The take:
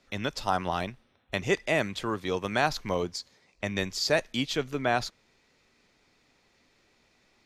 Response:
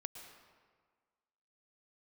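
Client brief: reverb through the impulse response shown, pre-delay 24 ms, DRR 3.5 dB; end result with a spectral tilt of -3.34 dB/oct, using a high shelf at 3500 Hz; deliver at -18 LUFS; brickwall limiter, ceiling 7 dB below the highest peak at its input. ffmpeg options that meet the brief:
-filter_complex "[0:a]highshelf=f=3.5k:g=5.5,alimiter=limit=-16.5dB:level=0:latency=1,asplit=2[a][b];[1:a]atrim=start_sample=2205,adelay=24[c];[b][c]afir=irnorm=-1:irlink=0,volume=-0.5dB[d];[a][d]amix=inputs=2:normalize=0,volume=11.5dB"

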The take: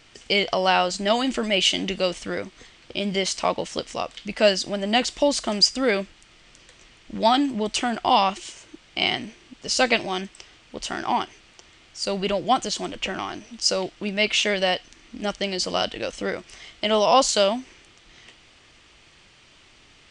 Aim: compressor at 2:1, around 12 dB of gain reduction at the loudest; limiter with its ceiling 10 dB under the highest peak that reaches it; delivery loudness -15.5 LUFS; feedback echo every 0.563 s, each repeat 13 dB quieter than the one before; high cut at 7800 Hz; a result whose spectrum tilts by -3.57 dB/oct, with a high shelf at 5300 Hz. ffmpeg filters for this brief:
-af "lowpass=7.8k,highshelf=f=5.3k:g=-4,acompressor=threshold=-36dB:ratio=2,alimiter=level_in=2dB:limit=-24dB:level=0:latency=1,volume=-2dB,aecho=1:1:563|1126|1689:0.224|0.0493|0.0108,volume=21dB"

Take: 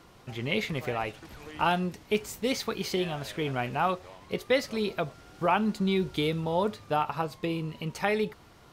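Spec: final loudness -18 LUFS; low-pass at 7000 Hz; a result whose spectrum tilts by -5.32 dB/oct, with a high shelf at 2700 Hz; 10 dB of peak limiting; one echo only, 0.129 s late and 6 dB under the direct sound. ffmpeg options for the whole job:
-af "lowpass=7k,highshelf=f=2.7k:g=-7,alimiter=limit=-22dB:level=0:latency=1,aecho=1:1:129:0.501,volume=14.5dB"

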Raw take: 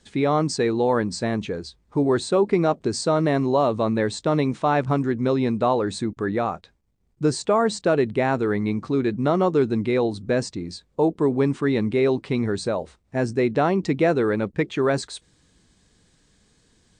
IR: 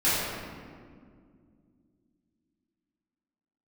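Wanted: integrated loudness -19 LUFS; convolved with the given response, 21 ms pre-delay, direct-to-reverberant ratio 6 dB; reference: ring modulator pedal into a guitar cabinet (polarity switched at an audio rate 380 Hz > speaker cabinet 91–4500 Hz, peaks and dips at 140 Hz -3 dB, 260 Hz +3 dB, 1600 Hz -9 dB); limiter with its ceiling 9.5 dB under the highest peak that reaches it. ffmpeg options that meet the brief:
-filter_complex "[0:a]alimiter=limit=-17dB:level=0:latency=1,asplit=2[a][b];[1:a]atrim=start_sample=2205,adelay=21[c];[b][c]afir=irnorm=-1:irlink=0,volume=-21dB[d];[a][d]amix=inputs=2:normalize=0,aeval=exprs='val(0)*sgn(sin(2*PI*380*n/s))':c=same,highpass=91,equalizer=f=140:t=q:w=4:g=-3,equalizer=f=260:t=q:w=4:g=3,equalizer=f=1.6k:t=q:w=4:g=-9,lowpass=f=4.5k:w=0.5412,lowpass=f=4.5k:w=1.3066,volume=7.5dB"

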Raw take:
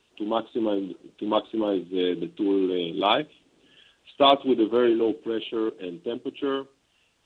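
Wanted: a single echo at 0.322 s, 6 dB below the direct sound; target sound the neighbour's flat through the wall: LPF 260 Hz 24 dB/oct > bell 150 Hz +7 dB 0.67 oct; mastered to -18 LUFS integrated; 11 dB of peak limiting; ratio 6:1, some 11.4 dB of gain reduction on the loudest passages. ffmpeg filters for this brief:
-af "acompressor=threshold=-25dB:ratio=6,alimiter=level_in=1dB:limit=-24dB:level=0:latency=1,volume=-1dB,lowpass=f=260:w=0.5412,lowpass=f=260:w=1.3066,equalizer=f=150:t=o:w=0.67:g=7,aecho=1:1:322:0.501,volume=23.5dB"

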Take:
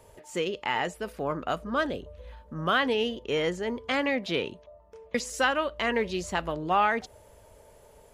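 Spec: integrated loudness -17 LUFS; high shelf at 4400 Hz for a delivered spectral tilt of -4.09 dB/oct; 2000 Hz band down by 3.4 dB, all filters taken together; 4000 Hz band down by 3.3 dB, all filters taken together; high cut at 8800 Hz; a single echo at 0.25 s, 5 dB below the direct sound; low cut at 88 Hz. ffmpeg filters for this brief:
-af "highpass=88,lowpass=8.8k,equalizer=f=2k:t=o:g=-4.5,equalizer=f=4k:t=o:g=-6,highshelf=f=4.4k:g=7,aecho=1:1:250:0.562,volume=12dB"

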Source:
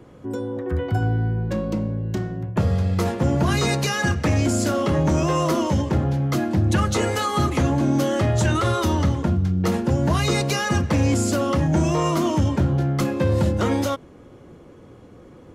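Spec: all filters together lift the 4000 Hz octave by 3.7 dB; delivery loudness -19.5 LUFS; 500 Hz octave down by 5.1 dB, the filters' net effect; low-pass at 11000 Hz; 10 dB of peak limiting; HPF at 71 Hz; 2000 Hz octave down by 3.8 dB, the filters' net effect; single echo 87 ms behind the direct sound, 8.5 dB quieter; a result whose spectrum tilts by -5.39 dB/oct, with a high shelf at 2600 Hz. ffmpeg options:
-af "highpass=71,lowpass=11k,equalizer=f=500:t=o:g=-6.5,equalizer=f=2k:t=o:g=-7,highshelf=f=2.6k:g=3,equalizer=f=4k:t=o:g=4.5,alimiter=limit=-19.5dB:level=0:latency=1,aecho=1:1:87:0.376,volume=7dB"

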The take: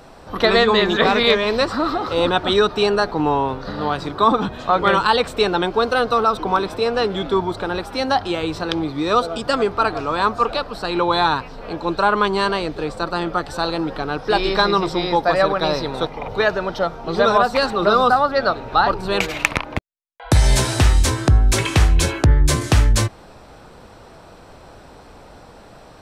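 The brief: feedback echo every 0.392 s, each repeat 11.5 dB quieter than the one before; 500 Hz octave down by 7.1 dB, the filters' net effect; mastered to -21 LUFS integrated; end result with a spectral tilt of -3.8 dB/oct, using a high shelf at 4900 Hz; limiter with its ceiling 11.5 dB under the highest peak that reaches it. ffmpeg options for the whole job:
-af "equalizer=f=500:t=o:g=-9,highshelf=f=4.9k:g=-9,alimiter=limit=-14.5dB:level=0:latency=1,aecho=1:1:392|784|1176:0.266|0.0718|0.0194,volume=4.5dB"

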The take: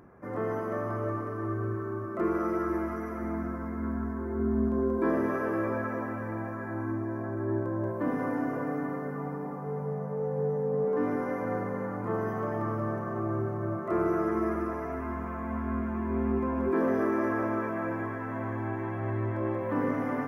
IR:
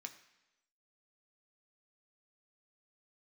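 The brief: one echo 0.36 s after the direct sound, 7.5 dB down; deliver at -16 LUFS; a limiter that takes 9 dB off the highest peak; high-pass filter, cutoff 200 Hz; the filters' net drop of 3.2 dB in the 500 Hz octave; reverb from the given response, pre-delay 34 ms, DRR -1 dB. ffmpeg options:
-filter_complex "[0:a]highpass=200,equalizer=f=500:t=o:g=-4,alimiter=level_in=3dB:limit=-24dB:level=0:latency=1,volume=-3dB,aecho=1:1:360:0.422,asplit=2[a][b];[1:a]atrim=start_sample=2205,adelay=34[c];[b][c]afir=irnorm=-1:irlink=0,volume=5dB[d];[a][d]amix=inputs=2:normalize=0,volume=16.5dB"

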